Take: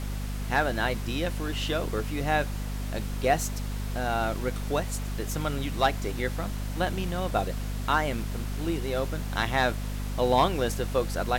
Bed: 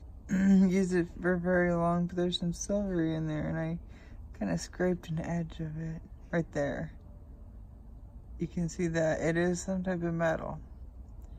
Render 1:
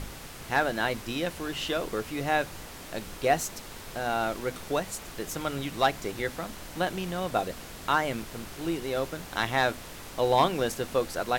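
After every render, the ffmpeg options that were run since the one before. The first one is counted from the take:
-af "bandreject=f=50:t=h:w=6,bandreject=f=100:t=h:w=6,bandreject=f=150:t=h:w=6,bandreject=f=200:t=h:w=6,bandreject=f=250:t=h:w=6"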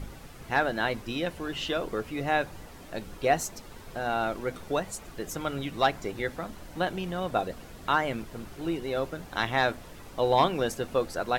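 -af "afftdn=nr=9:nf=-43"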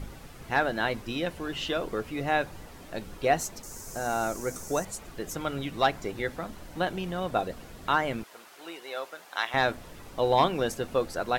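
-filter_complex "[0:a]asettb=1/sr,asplit=3[a][b][c];[a]atrim=end=3.634[d];[b]atrim=start=3.63:end=4.85,asetpts=PTS-STARTPTS,afade=t=in:d=0.004:c=qsin,afade=t=out:st=1.216:d=0.004:c=qsin,highshelf=f=4.8k:t=q:w=3:g=11[e];[c]atrim=start=4.846[f];[d][e]acrossfade=d=0.004:c1=hsin:c2=qsin[g];[g][f]acrossfade=d=0.004:c1=qsin:c2=hsin,asettb=1/sr,asplit=3[h][i][j];[h]atrim=end=8.234[k];[i]atrim=start=8.23:end=9.54,asetpts=PTS-STARTPTS,afade=t=in:d=0.004:c=qsin,afade=t=out:st=1.306:d=0.004:c=qsin,highpass=740[l];[j]atrim=start=9.536[m];[k][l]acrossfade=d=0.004:c1=hsin:c2=qsin[n];[n][m]acrossfade=d=0.004:c1=qsin:c2=hsin"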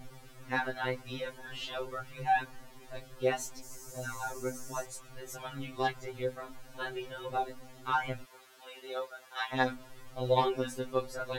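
-af "flanger=delay=1.2:depth=5.2:regen=35:speed=0.49:shape=triangular,afftfilt=real='re*2.45*eq(mod(b,6),0)':imag='im*2.45*eq(mod(b,6),0)':win_size=2048:overlap=0.75"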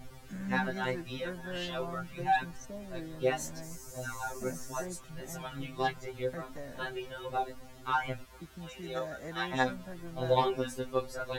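-filter_complex "[1:a]volume=-13dB[a];[0:a][a]amix=inputs=2:normalize=0"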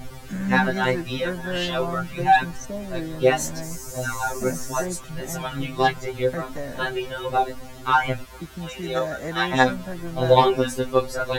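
-af "volume=11.5dB"

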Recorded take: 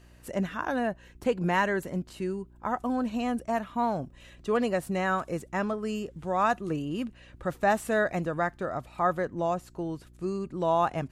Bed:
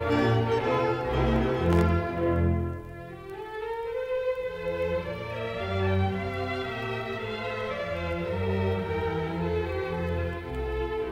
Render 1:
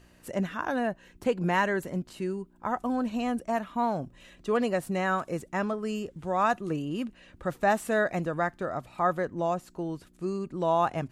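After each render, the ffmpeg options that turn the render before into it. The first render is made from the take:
-af "bandreject=f=60:t=h:w=4,bandreject=f=120:t=h:w=4"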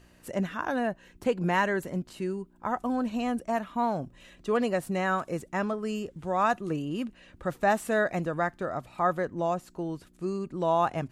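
-af anull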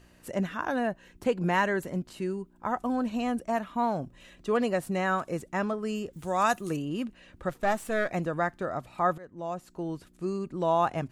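-filter_complex "[0:a]asettb=1/sr,asplit=3[a][b][c];[a]atrim=end=6.134[d];[b]atrim=start=6.13:end=6.77,asetpts=PTS-STARTPTS,afade=t=in:d=0.004:c=qsin,afade=t=out:st=0.636:d=0.004:c=qsin,aemphasis=mode=production:type=75fm[e];[c]atrim=start=6.766[f];[d][e]acrossfade=d=0.004:c1=hsin:c2=qsin[g];[g][f]acrossfade=d=0.004:c1=qsin:c2=hsin,asettb=1/sr,asplit=3[h][i][j];[h]atrim=end=7.494[k];[i]atrim=start=7.49:end=8.1,asetpts=PTS-STARTPTS,afade=t=in:d=0.004:c=qsin,afade=t=out:st=0.606:d=0.004:c=qsin,aeval=exprs='if(lt(val(0),0),0.447*val(0),val(0))':c=same[l];[j]atrim=start=8.096[m];[k][l]acrossfade=d=0.004:c1=hsin:c2=qsin[n];[n][m]acrossfade=d=0.004:c1=qsin:c2=hsin,asplit=2[o][p];[o]atrim=end=9.18,asetpts=PTS-STARTPTS,afade=t=out:st=9.176:d=0.004:c=hsin:silence=0.1[q];[p]atrim=start=9.18,asetpts=PTS-STARTPTS,afade=t=in:d=0.72:silence=0.1[r];[q][r]concat=n=2:v=0:a=1"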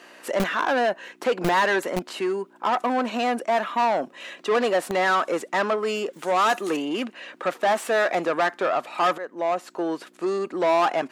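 -filter_complex "[0:a]asplit=2[a][b];[b]highpass=f=720:p=1,volume=24dB,asoftclip=type=tanh:threshold=-12.5dB[c];[a][c]amix=inputs=2:normalize=0,lowpass=f=2.7k:p=1,volume=-6dB,acrossover=split=230[d][e];[d]acrusher=bits=3:mix=0:aa=0.000001[f];[f][e]amix=inputs=2:normalize=0"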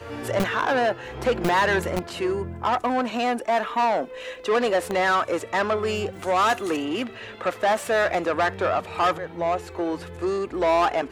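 -filter_complex "[1:a]volume=-10dB[a];[0:a][a]amix=inputs=2:normalize=0"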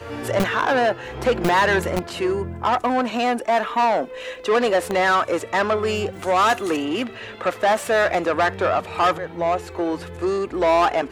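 -af "volume=3dB"

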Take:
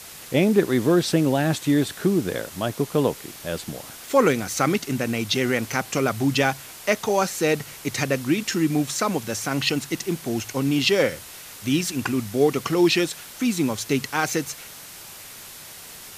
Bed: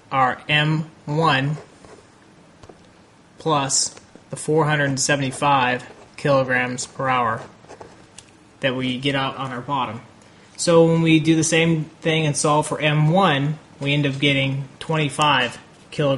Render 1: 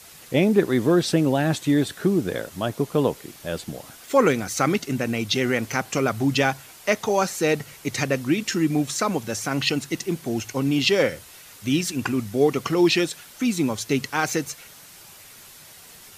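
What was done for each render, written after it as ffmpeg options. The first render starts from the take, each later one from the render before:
-af "afftdn=nr=6:nf=-41"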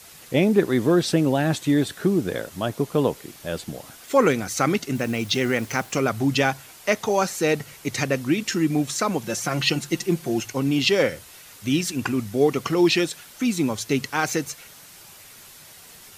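-filter_complex "[0:a]asettb=1/sr,asplit=3[a][b][c];[a]atrim=end=4.954[d];[b]atrim=start=4.95:end=5.95,asetpts=PTS-STARTPTS,afade=t=in:d=0.004:c=qsin,afade=t=out:st=0.996:d=0.004:c=qsin,acrusher=bits=6:mix=0:aa=0.5[e];[c]atrim=start=5.946[f];[d][e]acrossfade=d=0.004:c1=hsin:c2=qsin[g];[g][f]acrossfade=d=0.004:c1=qsin:c2=hsin,asettb=1/sr,asplit=3[h][i][j];[h]atrim=end=9.234[k];[i]atrim=start=9.23:end=10.46,asetpts=PTS-STARTPTS,afade=t=in:d=0.004:c=qsin,afade=t=out:st=1.226:d=0.004:c=qsin,aecho=1:1:5.7:0.65,atrim=end_sample=54243[l];[j]atrim=start=10.456[m];[k][l]acrossfade=d=0.004:c1=hsin:c2=qsin[n];[n][m]acrossfade=d=0.004:c1=qsin:c2=hsin"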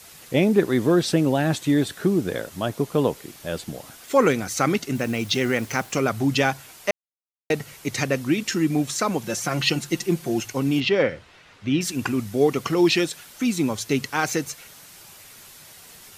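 -filter_complex "[0:a]asettb=1/sr,asplit=3[a][b][c];[a]atrim=end=10.804[d];[b]atrim=start=10.8:end=11.81,asetpts=PTS-STARTPTS,afade=t=in:d=0.004:c=qsin,afade=t=out:st=1.006:d=0.004:c=qsin,lowpass=3k[e];[c]atrim=start=11.806[f];[d][e]acrossfade=d=0.004:c1=hsin:c2=qsin[g];[g][f]acrossfade=d=0.004:c1=qsin:c2=hsin,asplit=3[h][i][j];[h]atrim=end=6.91,asetpts=PTS-STARTPTS,afade=t=out:st=6.906:d=0.004:c=hsin[k];[i]atrim=start=6.91:end=7.5,asetpts=PTS-STARTPTS,volume=0[l];[j]atrim=start=7.5,asetpts=PTS-STARTPTS,afade=t=in:d=0.004:c=hsin[m];[k][l][m]concat=n=3:v=0:a=1"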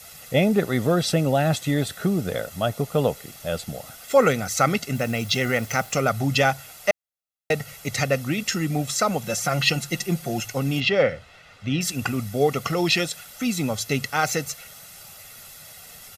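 -af "equalizer=f=12k:w=3.4:g=4,aecho=1:1:1.5:0.59"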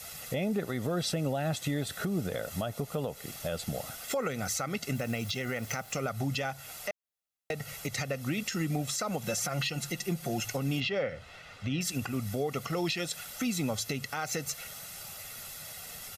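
-af "acompressor=threshold=-27dB:ratio=4,alimiter=limit=-22dB:level=0:latency=1:release=128"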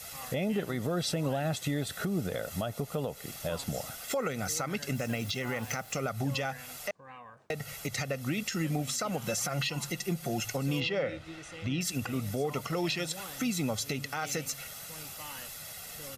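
-filter_complex "[1:a]volume=-29.5dB[a];[0:a][a]amix=inputs=2:normalize=0"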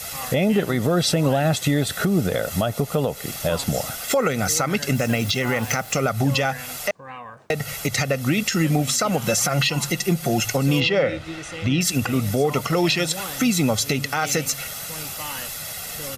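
-af "volume=11.5dB"

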